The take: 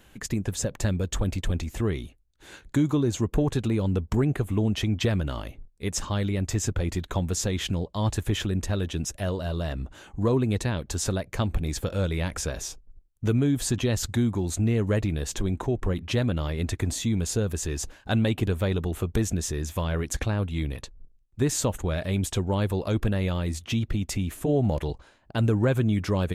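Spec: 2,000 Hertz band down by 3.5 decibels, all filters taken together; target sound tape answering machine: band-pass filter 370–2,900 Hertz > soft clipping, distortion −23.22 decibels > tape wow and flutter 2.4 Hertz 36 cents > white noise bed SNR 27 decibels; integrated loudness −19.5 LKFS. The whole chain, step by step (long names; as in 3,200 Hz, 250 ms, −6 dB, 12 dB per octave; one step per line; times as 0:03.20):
band-pass filter 370–2,900 Hz
parametric band 2,000 Hz −3.5 dB
soft clipping −18 dBFS
tape wow and flutter 2.4 Hz 36 cents
white noise bed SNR 27 dB
level +15.5 dB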